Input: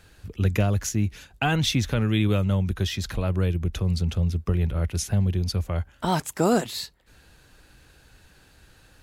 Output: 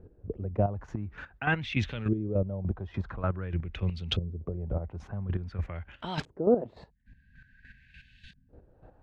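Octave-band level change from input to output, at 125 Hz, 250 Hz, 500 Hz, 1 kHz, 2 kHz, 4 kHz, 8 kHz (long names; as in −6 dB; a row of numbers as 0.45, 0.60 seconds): −9.0 dB, −7.5 dB, −2.5 dB, −7.0 dB, −3.0 dB, −9.0 dB, below −25 dB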